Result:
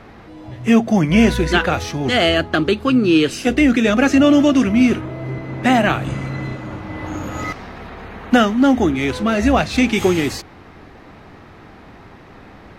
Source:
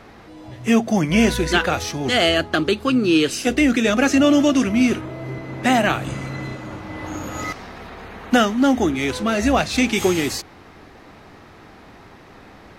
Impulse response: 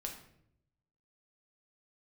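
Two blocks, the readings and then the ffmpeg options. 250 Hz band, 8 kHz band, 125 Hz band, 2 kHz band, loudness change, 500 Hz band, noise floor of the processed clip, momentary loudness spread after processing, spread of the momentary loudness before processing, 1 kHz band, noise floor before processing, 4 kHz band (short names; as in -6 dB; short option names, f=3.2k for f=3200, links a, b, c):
+3.5 dB, -3.5 dB, +4.5 dB, +1.5 dB, +2.5 dB, +2.0 dB, -42 dBFS, 15 LU, 15 LU, +2.0 dB, -45 dBFS, 0.0 dB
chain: -af "bass=f=250:g=3,treble=f=4k:g=-6,volume=2dB"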